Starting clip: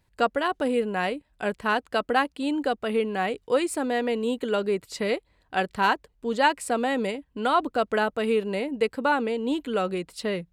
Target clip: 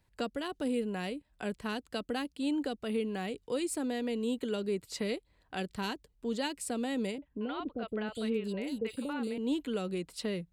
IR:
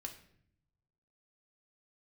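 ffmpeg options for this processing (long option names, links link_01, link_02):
-filter_complex "[0:a]acrossover=split=380|3000[link_01][link_02][link_03];[link_02]acompressor=threshold=-39dB:ratio=4[link_04];[link_01][link_04][link_03]amix=inputs=3:normalize=0,asettb=1/sr,asplit=3[link_05][link_06][link_07];[link_05]atrim=end=7.184[link_08];[link_06]atrim=start=7.18:end=9.38,asetpts=PTS-STARTPTS,afade=type=in:duration=0.004:curve=qsin,afade=type=out:start_time=2.196:duration=0.004:curve=qsin,acrossover=split=610|3400[link_09][link_10][link_11];[link_10]adelay=40[link_12];[link_11]adelay=700[link_13];[link_09][link_12][link_13]amix=inputs=3:normalize=0,atrim=end_sample=97020[link_14];[link_07]atrim=start=9.376[link_15];[link_08][link_14]acrossfade=duration=0.004:curve1=hsin:curve2=qsin[link_16];[link_16][link_15]acrossfade=duration=0.004:curve1=qsin:curve2=hsin,volume=-3.5dB"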